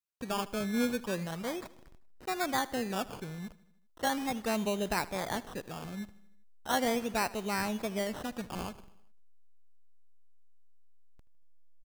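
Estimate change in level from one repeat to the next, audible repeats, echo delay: −4.5 dB, 4, 78 ms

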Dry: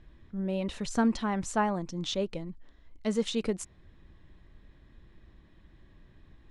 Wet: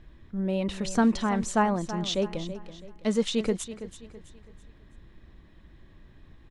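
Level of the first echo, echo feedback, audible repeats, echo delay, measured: −13.0 dB, 38%, 3, 329 ms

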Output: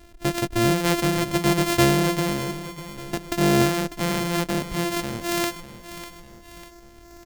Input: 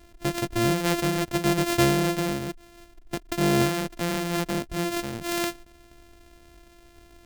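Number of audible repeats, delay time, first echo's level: 3, 597 ms, −13.0 dB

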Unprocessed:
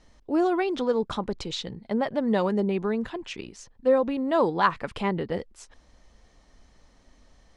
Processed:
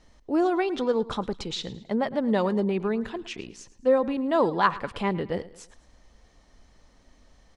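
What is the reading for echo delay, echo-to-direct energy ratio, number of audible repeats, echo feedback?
109 ms, −17.0 dB, 3, 42%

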